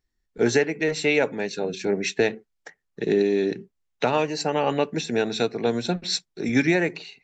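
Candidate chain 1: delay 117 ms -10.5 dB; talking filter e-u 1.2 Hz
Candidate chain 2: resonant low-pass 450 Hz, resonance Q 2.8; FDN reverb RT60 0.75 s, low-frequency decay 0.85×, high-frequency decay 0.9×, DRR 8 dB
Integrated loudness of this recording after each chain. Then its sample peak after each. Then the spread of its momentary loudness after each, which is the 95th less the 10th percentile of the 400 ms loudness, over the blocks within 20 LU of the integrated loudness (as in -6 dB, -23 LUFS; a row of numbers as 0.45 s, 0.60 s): -33.0 LUFS, -18.0 LUFS; -16.0 dBFS, -1.0 dBFS; 10 LU, 11 LU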